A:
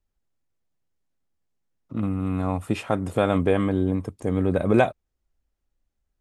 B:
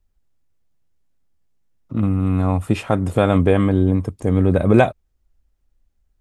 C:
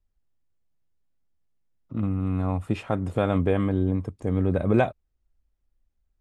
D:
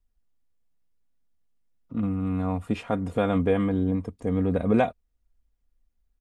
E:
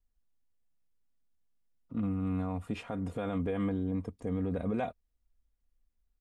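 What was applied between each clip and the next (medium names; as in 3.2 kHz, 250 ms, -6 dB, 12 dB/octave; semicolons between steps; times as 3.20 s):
bass shelf 120 Hz +9 dB; trim +4 dB
treble shelf 8 kHz -11.5 dB; trim -7.5 dB
comb 4.2 ms, depth 48%; trim -1 dB
peak limiter -19 dBFS, peak gain reduction 9 dB; trim -5 dB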